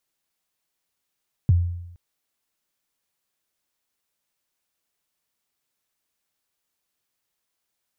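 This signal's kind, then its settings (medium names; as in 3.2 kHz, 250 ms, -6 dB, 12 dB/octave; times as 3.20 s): kick drum length 0.47 s, from 150 Hz, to 87 Hz, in 23 ms, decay 0.86 s, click off, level -11 dB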